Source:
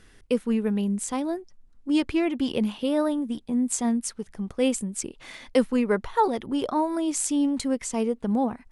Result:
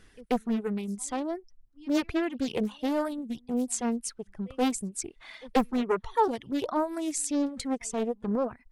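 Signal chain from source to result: pre-echo 0.134 s -23 dB; reverb removal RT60 1.6 s; Doppler distortion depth 0.69 ms; gain -2.5 dB

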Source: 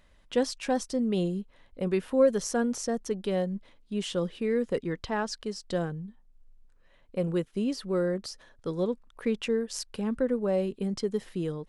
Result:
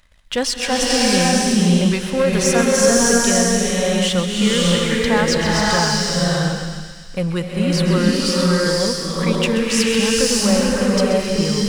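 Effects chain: bell 360 Hz -13.5 dB 1.8 oct; sample leveller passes 2; thin delay 0.131 s, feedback 73%, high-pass 2000 Hz, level -10 dB; bloom reverb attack 0.61 s, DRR -5 dB; gain +8 dB

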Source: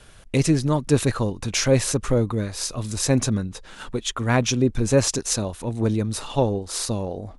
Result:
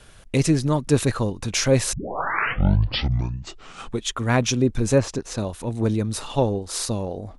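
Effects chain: 1.93 tape start 2.11 s; 4.98–5.38 LPF 1600 Hz 6 dB/oct

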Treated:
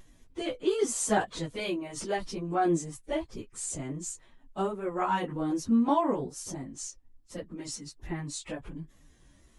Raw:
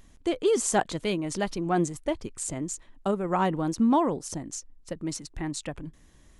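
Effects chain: vibrato 1.9 Hz 21 cents; plain phase-vocoder stretch 1.5×

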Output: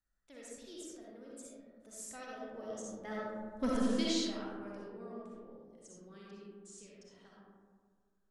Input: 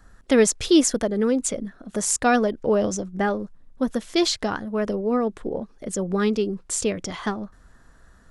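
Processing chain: Doppler pass-by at 3.64, 17 m/s, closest 1.4 m; pre-emphasis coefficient 0.8; soft clip -33.5 dBFS, distortion -13 dB; air absorption 53 m; reverb RT60 1.8 s, pre-delay 20 ms, DRR -5.5 dB; gain +6.5 dB

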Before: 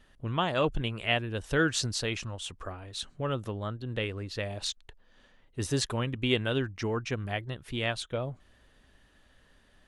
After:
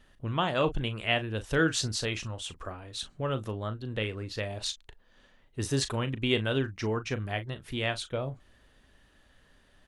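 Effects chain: doubler 37 ms -12 dB

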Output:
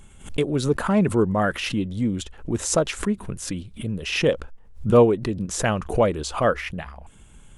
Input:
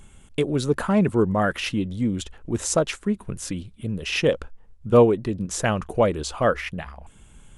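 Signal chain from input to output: backwards sustainer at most 140 dB/s

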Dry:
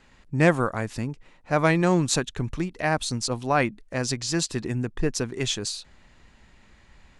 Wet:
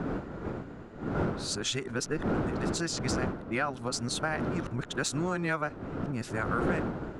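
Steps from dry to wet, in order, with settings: whole clip reversed; wind noise 330 Hz -23 dBFS; low shelf 79 Hz -8.5 dB; in parallel at -4 dB: soft clip -15 dBFS, distortion -10 dB; on the sum: bell 1400 Hz +10.5 dB 0.39 oct; compressor 4:1, threshold -22 dBFS, peak gain reduction 14.5 dB; mismatched tape noise reduction decoder only; gain -6 dB

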